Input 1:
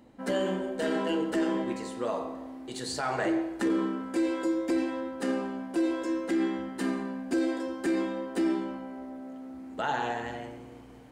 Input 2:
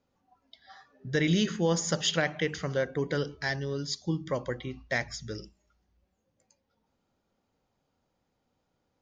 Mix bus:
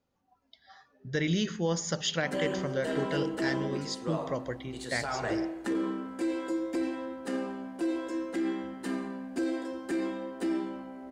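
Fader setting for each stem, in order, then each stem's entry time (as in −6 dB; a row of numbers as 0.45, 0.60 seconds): −3.5, −3.0 decibels; 2.05, 0.00 seconds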